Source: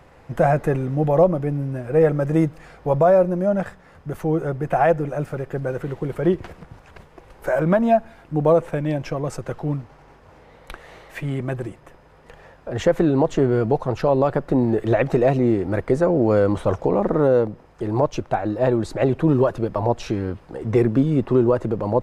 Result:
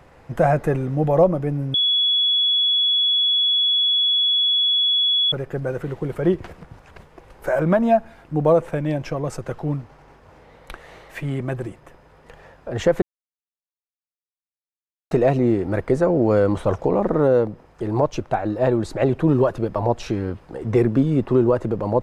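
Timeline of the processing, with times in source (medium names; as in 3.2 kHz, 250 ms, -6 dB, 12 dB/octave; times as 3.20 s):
1.74–5.32 s: bleep 3.38 kHz -15.5 dBFS
13.02–15.11 s: mute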